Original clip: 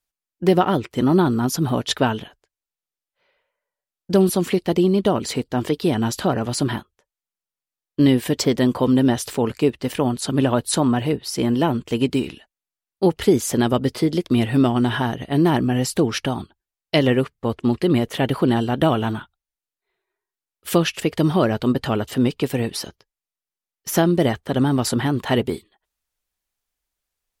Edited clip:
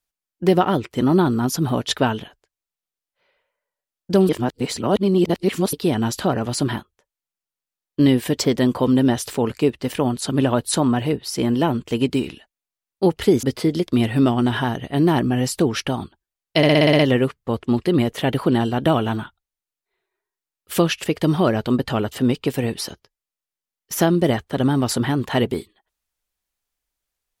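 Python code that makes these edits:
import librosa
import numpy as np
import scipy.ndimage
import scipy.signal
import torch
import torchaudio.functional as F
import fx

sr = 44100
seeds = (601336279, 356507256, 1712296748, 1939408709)

y = fx.edit(x, sr, fx.reverse_span(start_s=4.29, length_s=1.44),
    fx.cut(start_s=13.43, length_s=0.38),
    fx.stutter(start_s=16.95, slice_s=0.06, count=8), tone=tone)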